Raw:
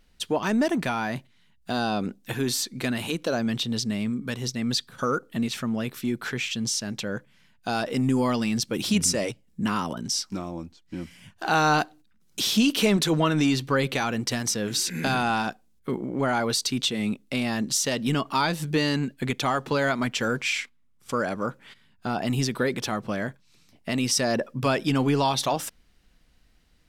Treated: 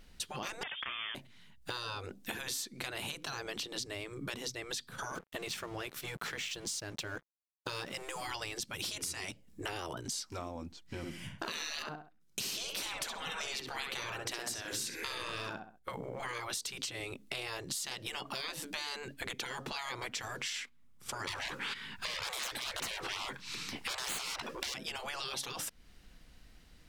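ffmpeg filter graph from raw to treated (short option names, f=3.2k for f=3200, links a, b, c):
-filter_complex "[0:a]asettb=1/sr,asplit=3[a][b][c];[a]atrim=end=0.634[d];[b]atrim=start=0.63:end=1.15,asetpts=PTS-STARTPTS,afade=t=in:d=0.004:c=qsin,afade=t=out:st=0.516:d=0.004:c=qsin,adynamicsmooth=sensitivity=3:basefreq=1k,lowpass=f=3.1k:t=q:w=0.5098,lowpass=f=3.1k:t=q:w=0.6013,lowpass=f=3.1k:t=q:w=0.9,lowpass=f=3.1k:t=q:w=2.563,afreqshift=-3600[e];[c]atrim=start=1.146[f];[d][e]acrossfade=d=0.004:c1=hsin:c2=qsin[g];[g][f]acrossfade=d=0.004:c1=qsin:c2=hsin,asettb=1/sr,asplit=3[h][i][j];[h]atrim=end=5.154[k];[i]atrim=start=5.15:end=8.27,asetpts=PTS-STARTPTS,afade=t=in:d=0.004:c=qsin,afade=t=out:st=3.116:d=0.004:c=qsin,equalizer=f=170:w=7.3:g=8.5,aeval=exprs='sgn(val(0))*max(abs(val(0))-0.00422,0)':c=same[l];[j]atrim=start=8.266[m];[k][l]acrossfade=d=0.004:c1=hsin:c2=qsin[n];[n][m]acrossfade=d=0.004:c1=qsin:c2=hsin,asettb=1/sr,asplit=3[o][p][q];[o]atrim=end=10.974[r];[p]atrim=start=10.97:end=15.89,asetpts=PTS-STARTPTS,afade=t=in:d=0.004:c=qsin,afade=t=out:st=4.916:d=0.004:c=qsin,agate=range=-14dB:threshold=-54dB:ratio=16:release=100:detection=peak,asplit=2[s][t];[t]adelay=66,lowpass=f=2.6k:p=1,volume=-5dB,asplit=2[u][v];[v]adelay=66,lowpass=f=2.6k:p=1,volume=0.29,asplit=2[w][x];[x]adelay=66,lowpass=f=2.6k:p=1,volume=0.29,asplit=2[y][z];[z]adelay=66,lowpass=f=2.6k:p=1,volume=0.29[aa];[s][u][w][y][aa]amix=inputs=5:normalize=0,atrim=end_sample=216972[ab];[q]atrim=start=15.886[ac];[r][ab]acrossfade=d=0.004:c1=hsin:c2=qsin[ad];[ad][ac]acrossfade=d=0.004:c1=qsin:c2=hsin,asettb=1/sr,asplit=3[ae][af][ag];[ae]atrim=end=21.274[ah];[af]atrim=start=21.27:end=24.74,asetpts=PTS-STARTPTS,afade=t=in:d=0.004:c=qsin,afade=t=out:st=3.466:d=0.004:c=qsin,equalizer=f=630:w=3.7:g=-13.5,aeval=exprs='0.266*sin(PI/2*2.82*val(0)/0.266)':c=same,asplit=2[ai][aj];[aj]highpass=f=720:p=1,volume=16dB,asoftclip=type=tanh:threshold=-11dB[ak];[ai][ak]amix=inputs=2:normalize=0,lowpass=f=3.4k:p=1,volume=-6dB[al];[ag]atrim=start=24.736[am];[ah][al]acrossfade=d=0.004:c1=hsin:c2=qsin[an];[an][am]acrossfade=d=0.004:c1=qsin:c2=hsin,afftfilt=real='re*lt(hypot(re,im),0.112)':imag='im*lt(hypot(re,im),0.112)':win_size=1024:overlap=0.75,acompressor=threshold=-42dB:ratio=4,volume=4dB"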